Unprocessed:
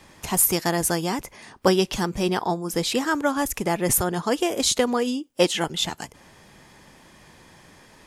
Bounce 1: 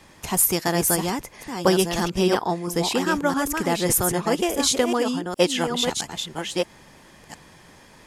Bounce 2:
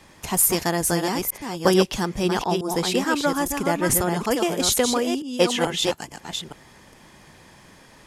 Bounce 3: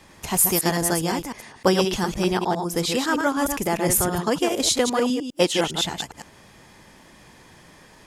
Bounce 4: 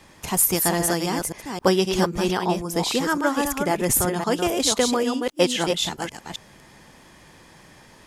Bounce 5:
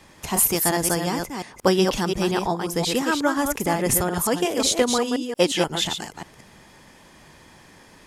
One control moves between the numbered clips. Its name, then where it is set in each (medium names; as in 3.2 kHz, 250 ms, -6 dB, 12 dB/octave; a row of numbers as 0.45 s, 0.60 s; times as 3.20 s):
chunks repeated in reverse, time: 668 ms, 435 ms, 102 ms, 265 ms, 178 ms